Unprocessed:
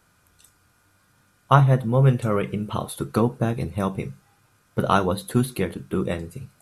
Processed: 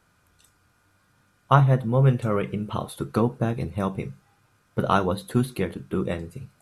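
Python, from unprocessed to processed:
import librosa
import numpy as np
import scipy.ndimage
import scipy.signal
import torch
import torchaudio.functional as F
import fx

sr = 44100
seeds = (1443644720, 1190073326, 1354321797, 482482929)

y = fx.high_shelf(x, sr, hz=6600.0, db=-6.5)
y = y * 10.0 ** (-1.5 / 20.0)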